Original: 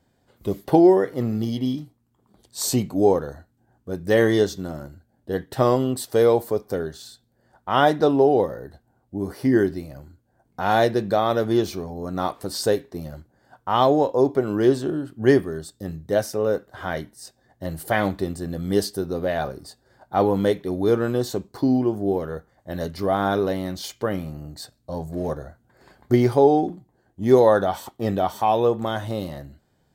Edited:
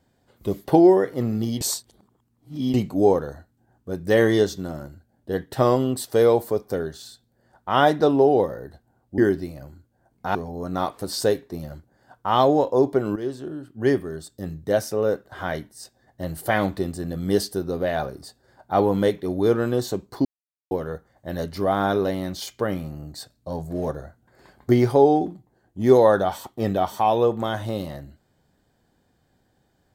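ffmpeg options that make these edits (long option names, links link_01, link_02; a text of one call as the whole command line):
ffmpeg -i in.wav -filter_complex "[0:a]asplit=8[link_01][link_02][link_03][link_04][link_05][link_06][link_07][link_08];[link_01]atrim=end=1.612[link_09];[link_02]atrim=start=1.608:end=2.742,asetpts=PTS-STARTPTS,areverse[link_10];[link_03]atrim=start=2.738:end=9.182[link_11];[link_04]atrim=start=9.518:end=10.692[link_12];[link_05]atrim=start=11.768:end=14.58,asetpts=PTS-STARTPTS,afade=type=out:start_time=2.808:duration=0.004:curve=hsin:silence=0.223872[link_13];[link_06]atrim=start=14.58:end=21.67,asetpts=PTS-STARTPTS,afade=type=in:duration=1.36:silence=0.223872,afade=type=out:start_time=7.086:duration=0.004:curve=hsin[link_14];[link_07]atrim=start=21.67:end=22.13,asetpts=PTS-STARTPTS,volume=0[link_15];[link_08]atrim=start=22.13,asetpts=PTS-STARTPTS,afade=type=in:duration=0.004:curve=hsin[link_16];[link_09][link_10]acrossfade=duration=0.004:curve1=hsin:curve2=hsin[link_17];[link_17][link_11]acrossfade=duration=0.004:curve1=hsin:curve2=hsin[link_18];[link_18][link_12]acrossfade=duration=0.004:curve1=hsin:curve2=hsin[link_19];[link_13][link_14][link_15][link_16]concat=n=4:v=0:a=1[link_20];[link_19][link_20]acrossfade=duration=0.004:curve1=hsin:curve2=hsin" out.wav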